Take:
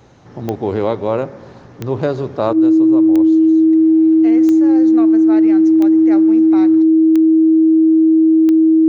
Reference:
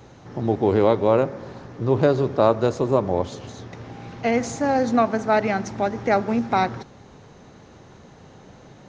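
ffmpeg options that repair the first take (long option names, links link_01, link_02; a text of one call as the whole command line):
ffmpeg -i in.wav -af "adeclick=threshold=4,bandreject=frequency=320:width=30,asetnsamples=nb_out_samples=441:pad=0,asendcmd='2.53 volume volume 9.5dB',volume=0dB" out.wav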